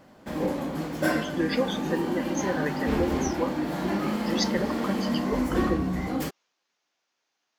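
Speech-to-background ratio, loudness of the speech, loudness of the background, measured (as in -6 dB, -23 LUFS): -3.5 dB, -32.0 LUFS, -28.5 LUFS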